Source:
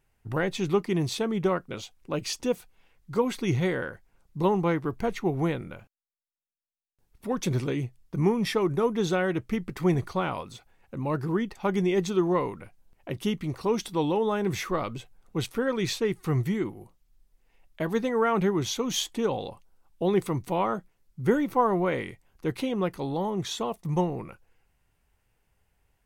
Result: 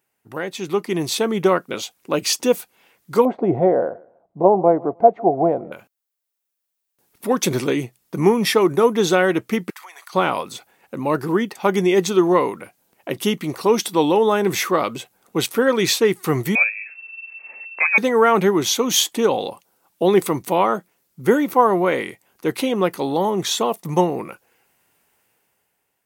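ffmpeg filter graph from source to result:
-filter_complex "[0:a]asettb=1/sr,asplit=3[a][b][c];[a]atrim=end=3.254[d];[b]atrim=start=3.25:end=5.72,asetpts=PTS-STARTPTS,afade=t=in:d=0.004:c=qsin,afade=t=out:st=2.466:d=0.004:c=qsin,lowpass=f=680:t=q:w=7.1,aecho=1:1:155|310:0.0668|0.0154,atrim=end_sample=108927[e];[c]atrim=start=5.716[f];[d][e]acrossfade=d=0.004:c1=hsin:c2=qsin[g];[g][f]acrossfade=d=0.004:c1=qsin:c2=hsin,asettb=1/sr,asplit=3[h][i][j];[h]atrim=end=9.704[k];[i]atrim=start=9.7:end=10.13,asetpts=PTS-STARTPTS,afade=t=in:d=0.004:c=qsin,afade=t=out:st=0.426:d=0.004:c=qsin,highpass=f=940:w=0.5412,highpass=f=940:w=1.3066,acompressor=threshold=-47dB:ratio=12:attack=3.2:release=140:knee=1:detection=peak[l];[j]atrim=start=10.126[m];[k][l]acrossfade=d=0.004:c1=hsin:c2=qsin[n];[n][m]acrossfade=d=0.004:c1=qsin:c2=hsin,asettb=1/sr,asplit=3[o][p][q];[o]atrim=end=16.554[r];[p]atrim=start=16.55:end=17.98,asetpts=PTS-STARTPTS,afade=t=in:d=0.004:c=qsin,afade=t=out:st=1.426:d=0.004:c=qsin,acompressor=mode=upward:threshold=-37dB:ratio=2.5:attack=3.2:release=140:knee=2.83:detection=peak,lowpass=f=2.3k:t=q:w=0.5098,lowpass=f=2.3k:t=q:w=0.6013,lowpass=f=2.3k:t=q:w=0.9,lowpass=f=2.3k:t=q:w=2.563,afreqshift=-2700[s];[q]atrim=start=17.976[t];[r][s]acrossfade=d=0.004:c1=hsin:c2=qsin[u];[u][t]acrossfade=d=0.004:c1=qsin:c2=hsin,highpass=240,highshelf=f=10k:g=10.5,dynaudnorm=f=170:g=11:m=11.5dB"

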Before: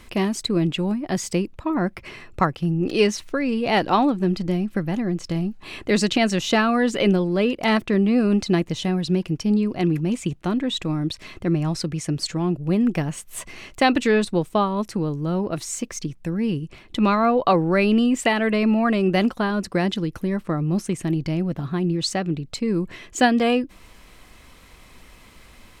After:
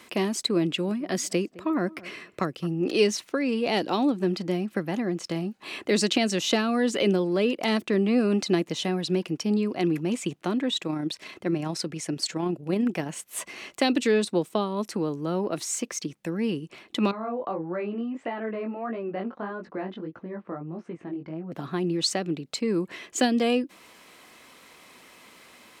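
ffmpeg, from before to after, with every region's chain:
-filter_complex "[0:a]asettb=1/sr,asplit=3[a][b][c];[a]atrim=end=0.664[d];[b]atrim=start=0.66:end=2.67,asetpts=PTS-STARTPTS,afade=t=in:d=0.004:c=qsin,afade=t=out:st=2.006:d=0.004:c=qsin,equalizer=f=860:w=4.3:g=-8.5,asplit=2[e][f];[f]adelay=212,lowpass=f=880:p=1,volume=-20dB,asplit=2[g][h];[h]adelay=212,lowpass=f=880:p=1,volume=0.29[i];[e][g][i]amix=inputs=3:normalize=0,atrim=end_sample=88641[j];[c]atrim=start=2.666[k];[d][j]acrossfade=d=0.004:c1=hsin:c2=qsin[l];[l][k]acrossfade=d=0.004:c1=qsin:c2=hsin,asettb=1/sr,asplit=3[m][n][o];[m]atrim=end=10.704[p];[n]atrim=start=10.7:end=13.28,asetpts=PTS-STARTPTS,afade=t=in:d=0.004:c=qsin,afade=t=out:st=2.576:d=0.004:c=qsin,bandreject=f=1.2k:w=15,tremolo=f=30:d=0.333[q];[o]atrim=start=13.276[r];[p][q]acrossfade=d=0.004:c1=hsin:c2=qsin[s];[s][r]acrossfade=d=0.004:c1=qsin:c2=hsin,asettb=1/sr,asplit=3[t][u][v];[t]atrim=end=17.114[w];[u]atrim=start=17.11:end=21.52,asetpts=PTS-STARTPTS,afade=t=in:d=0.004:c=qsin,afade=t=out:st=4.406:d=0.004:c=qsin,lowpass=1.5k,flanger=delay=17:depth=4.7:speed=1.6,acompressor=threshold=-36dB:ratio=1.5:attack=3.2:release=140:knee=1:detection=peak[x];[v]atrim=start=21.516[y];[w][x]acrossfade=d=0.004:c1=hsin:c2=qsin[z];[z][y]acrossfade=d=0.004:c1=qsin:c2=hsin,highpass=260,acrossover=split=490|3000[aa][ab][ac];[ab]acompressor=threshold=-30dB:ratio=6[ad];[aa][ad][ac]amix=inputs=3:normalize=0"

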